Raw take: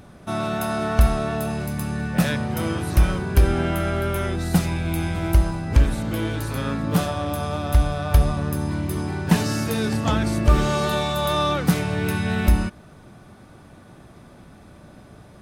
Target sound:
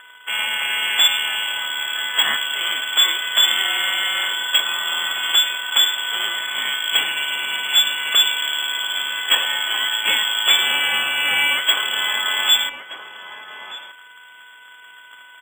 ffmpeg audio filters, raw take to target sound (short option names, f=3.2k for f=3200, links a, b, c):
-filter_complex "[0:a]aeval=exprs='val(0)+0.02*sin(2*PI*2000*n/s)':c=same,asplit=2[a][b];[b]asetrate=55563,aresample=44100,atempo=0.793701,volume=-11dB[c];[a][c]amix=inputs=2:normalize=0,aresample=11025,aeval=exprs='sgn(val(0))*max(abs(val(0))-0.015,0)':c=same,aresample=44100,adynamicsmooth=sensitivity=6:basefreq=1.3k,aeval=exprs='0.355*(abs(mod(val(0)/0.355+3,4)-2)-1)':c=same,lowpass=f=3k:t=q:w=0.5098,lowpass=f=3k:t=q:w=0.6013,lowpass=f=3k:t=q:w=0.9,lowpass=f=3k:t=q:w=2.563,afreqshift=-3500,acrusher=samples=4:mix=1:aa=0.000001,acrossover=split=190 2700:gain=0.158 1 0.2[d][e][f];[d][e][f]amix=inputs=3:normalize=0,asplit=2[g][h];[h]adelay=1224,volume=-8dB,highshelf=f=4k:g=-27.6[i];[g][i]amix=inputs=2:normalize=0,volume=9dB"